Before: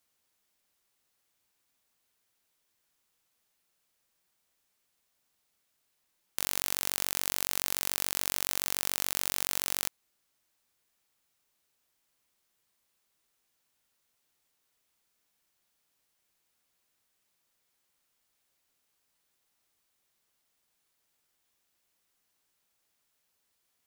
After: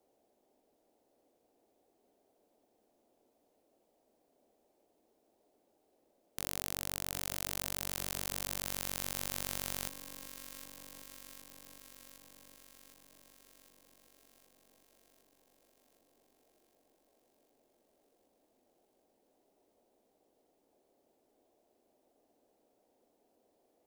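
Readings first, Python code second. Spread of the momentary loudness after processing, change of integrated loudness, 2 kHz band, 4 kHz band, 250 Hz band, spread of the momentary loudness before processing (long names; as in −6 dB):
19 LU, −8.0 dB, −6.5 dB, −7.0 dB, 0.0 dB, 3 LU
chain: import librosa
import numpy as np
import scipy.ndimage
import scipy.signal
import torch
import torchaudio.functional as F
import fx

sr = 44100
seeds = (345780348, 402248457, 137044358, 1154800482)

p1 = fx.low_shelf(x, sr, hz=470.0, db=10.5)
p2 = fx.dmg_noise_band(p1, sr, seeds[0], low_hz=230.0, high_hz=750.0, level_db=-68.0)
p3 = p2 + fx.echo_alternate(p2, sr, ms=381, hz=1000.0, feedback_pct=82, wet_db=-10.0, dry=0)
y = p3 * 10.0 ** (-7.5 / 20.0)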